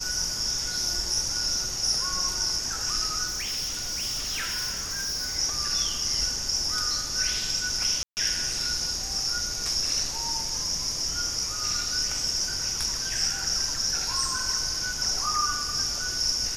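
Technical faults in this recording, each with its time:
0:03.26–0:05.37: clipping −27 dBFS
0:08.03–0:08.17: drop-out 139 ms

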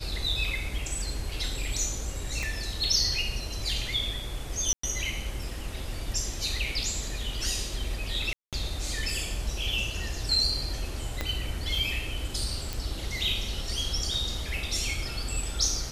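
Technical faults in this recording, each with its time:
0:02.43: click
0:04.73–0:04.83: drop-out 104 ms
0:08.33–0:08.53: drop-out 197 ms
0:11.21: click −14 dBFS
0:12.73: click

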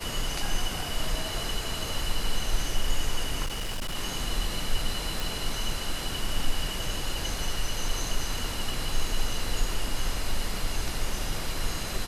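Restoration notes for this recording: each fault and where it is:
0:03.45–0:03.96: clipping −27.5 dBFS
0:05.20: click

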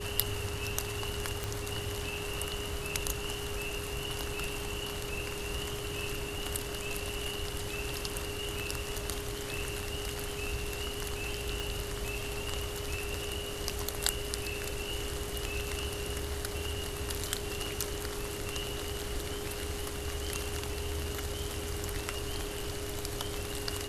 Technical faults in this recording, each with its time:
whistle 410 Hz −41 dBFS
0:01.44: click
0:11.60: click

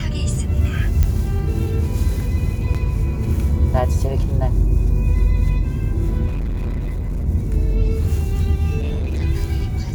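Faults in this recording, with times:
0:01.03: click −7 dBFS
0:02.74–0:02.75: drop-out 6.2 ms
0:06.26–0:07.27: clipping −19.5 dBFS
0:08.79–0:09.22: clipping −18.5 dBFS

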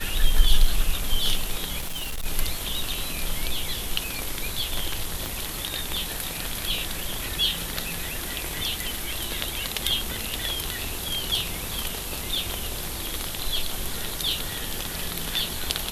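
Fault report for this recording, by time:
0:01.79–0:02.26: clipping −26.5 dBFS
0:05.26: click

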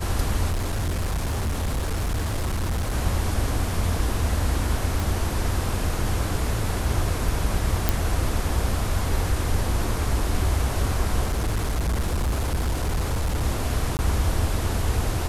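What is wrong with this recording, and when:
0:00.50–0:02.95: clipping −21.5 dBFS
0:05.00: click
0:07.89: click
0:11.24–0:13.44: clipping −20 dBFS
0:13.97–0:13.99: drop-out 19 ms

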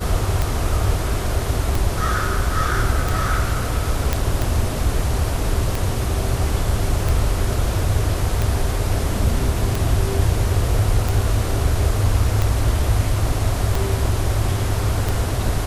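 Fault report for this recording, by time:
scratch tick 45 rpm
0:04.13: click −4 dBFS

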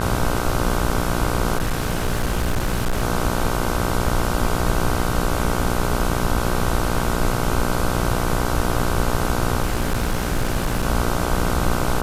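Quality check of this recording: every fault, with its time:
mains buzz 60 Hz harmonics 26 −24 dBFS
0:01.57–0:03.02: clipping −16.5 dBFS
0:09.62–0:10.86: clipping −16 dBFS

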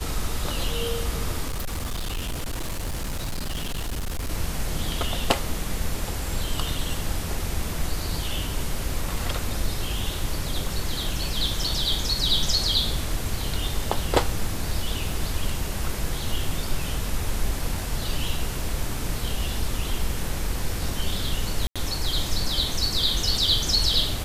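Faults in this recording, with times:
0:01.47–0:04.29: clipping −25 dBFS
0:21.67–0:21.76: drop-out 86 ms

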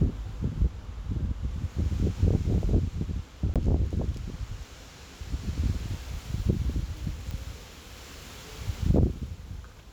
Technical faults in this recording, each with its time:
0:03.54–0:03.56: drop-out 17 ms
0:07.31: click

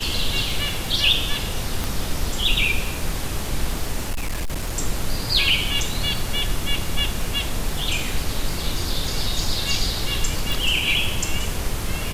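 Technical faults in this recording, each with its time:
surface crackle 34 per second −25 dBFS
0:01.84: click
0:04.10–0:04.77: clipping −21 dBFS
0:10.52: click

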